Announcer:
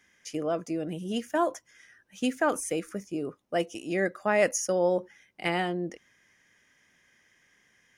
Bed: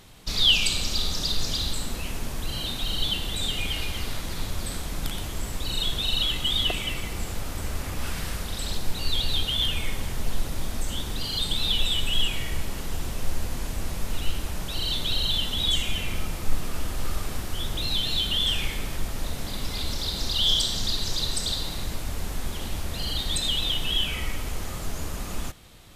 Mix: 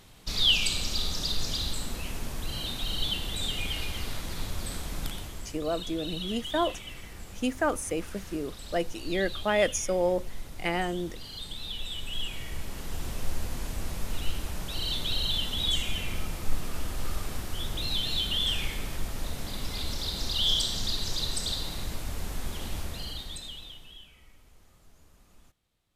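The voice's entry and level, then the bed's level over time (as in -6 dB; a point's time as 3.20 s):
5.20 s, -1.0 dB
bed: 5.02 s -3.5 dB
5.62 s -12.5 dB
11.76 s -12.5 dB
13.10 s -3.5 dB
22.82 s -3.5 dB
24.14 s -27 dB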